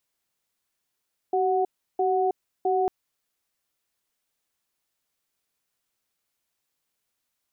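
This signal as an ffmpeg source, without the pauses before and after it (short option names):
-f lavfi -i "aevalsrc='0.0708*(sin(2*PI*380*t)+sin(2*PI*738*t))*clip(min(mod(t,0.66),0.32-mod(t,0.66))/0.005,0,1)':d=1.55:s=44100"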